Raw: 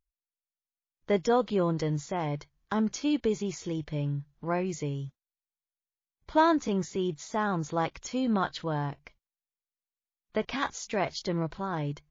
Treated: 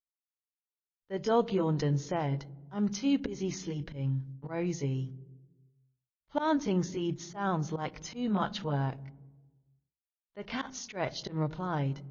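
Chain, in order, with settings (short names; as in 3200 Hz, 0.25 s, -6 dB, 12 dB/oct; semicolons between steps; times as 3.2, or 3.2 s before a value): delay-line pitch shifter -1 st; gate -49 dBFS, range -27 dB; auto swell 0.145 s; on a send: reverb RT60 1.2 s, pre-delay 3 ms, DRR 20.5 dB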